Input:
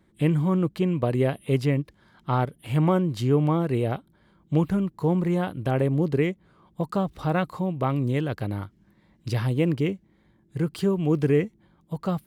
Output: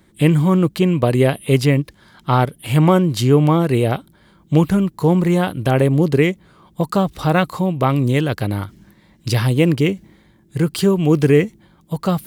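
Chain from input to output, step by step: treble shelf 3 kHz +8.5 dB; reverse; upward compressor, threshold -43 dBFS; reverse; trim +8 dB

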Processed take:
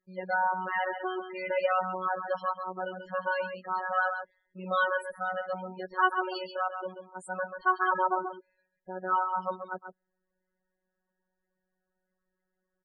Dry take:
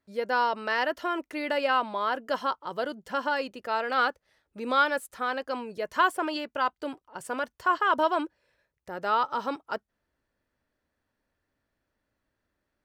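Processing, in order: delay 136 ms -8 dB; robot voice 185 Hz; loudest bins only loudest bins 16

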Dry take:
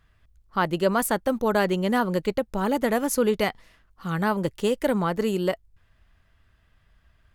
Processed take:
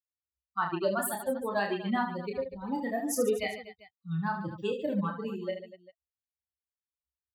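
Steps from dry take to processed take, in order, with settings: expander on every frequency bin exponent 3; high-pass 71 Hz; on a send: reverse bouncing-ball echo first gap 30 ms, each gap 1.5×, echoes 5; on the sum: trim -3 dB

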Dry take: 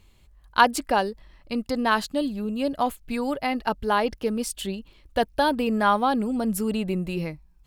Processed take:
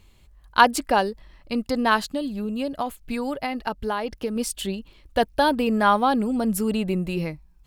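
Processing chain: 1.96–4.36 s: compression 4:1, threshold -26 dBFS, peak gain reduction 8 dB; trim +2 dB

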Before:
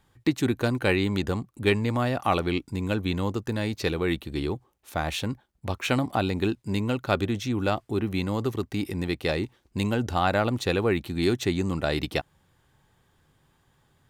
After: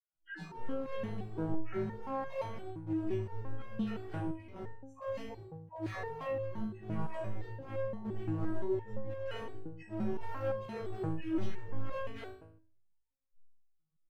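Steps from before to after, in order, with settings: frequency axis rescaled in octaves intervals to 87%; RIAA curve playback; de-hum 189.1 Hz, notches 32; spectral noise reduction 30 dB; dynamic bell 130 Hz, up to +5 dB, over -36 dBFS, Q 2.4; peak limiter -15.5 dBFS, peak gain reduction 10.5 dB; phase dispersion lows, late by 135 ms, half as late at 530 Hz; overload inside the chain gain 29 dB; doubling 18 ms -12 dB; flutter echo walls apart 3.2 m, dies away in 0.51 s; simulated room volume 280 m³, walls furnished, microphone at 0.91 m; resonator arpeggio 5.8 Hz 160–540 Hz; trim +3 dB

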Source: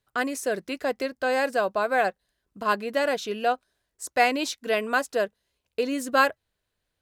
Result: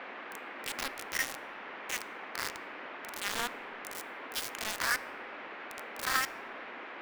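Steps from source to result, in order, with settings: reverse spectral sustain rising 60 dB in 0.80 s; Doppler pass-by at 2.93 s, 8 m/s, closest 6.4 m; Chebyshev band-stop 180–640 Hz, order 4; compression 10:1, threshold -34 dBFS, peak gain reduction 16 dB; LFO high-pass sine 0.79 Hz 880–5500 Hz; Chebyshev shaper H 3 -14 dB, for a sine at -19.5 dBFS; bit crusher 6-bit; formant shift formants +3 st; band noise 240–2300 Hz -52 dBFS; on a send: reverberation RT60 2.3 s, pre-delay 4 ms, DRR 16.5 dB; on the sum: trim +7.5 dB

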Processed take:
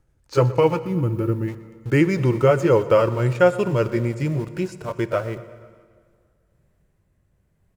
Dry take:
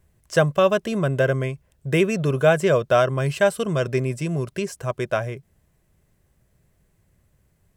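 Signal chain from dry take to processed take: pitch bend over the whole clip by -3.5 st ending unshifted; treble shelf 3 kHz -8.5 dB; in parallel at -7.5 dB: small samples zeroed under -32.5 dBFS; on the sum: time-frequency box 0.81–1.48 s, 370–9500 Hz -11 dB; feedback delay 121 ms, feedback 60%, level -19 dB; plate-style reverb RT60 2.1 s, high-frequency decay 0.8×, DRR 15.5 dB

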